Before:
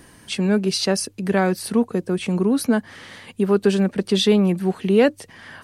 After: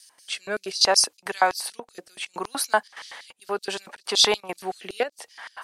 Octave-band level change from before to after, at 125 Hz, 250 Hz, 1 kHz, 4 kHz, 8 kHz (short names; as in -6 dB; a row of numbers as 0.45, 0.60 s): under -25 dB, -22.0 dB, +3.5 dB, +4.0 dB, +4.5 dB